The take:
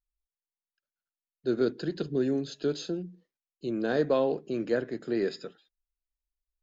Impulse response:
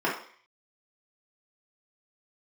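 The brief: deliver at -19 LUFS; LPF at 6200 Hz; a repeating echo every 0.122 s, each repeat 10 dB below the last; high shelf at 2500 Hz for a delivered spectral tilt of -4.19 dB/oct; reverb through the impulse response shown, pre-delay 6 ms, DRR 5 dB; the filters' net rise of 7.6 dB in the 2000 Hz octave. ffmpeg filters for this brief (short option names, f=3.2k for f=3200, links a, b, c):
-filter_complex "[0:a]lowpass=6.2k,equalizer=f=2k:t=o:g=8.5,highshelf=f=2.5k:g=4.5,aecho=1:1:122|244|366|488:0.316|0.101|0.0324|0.0104,asplit=2[a][b];[1:a]atrim=start_sample=2205,adelay=6[c];[b][c]afir=irnorm=-1:irlink=0,volume=-18.5dB[d];[a][d]amix=inputs=2:normalize=0,volume=8.5dB"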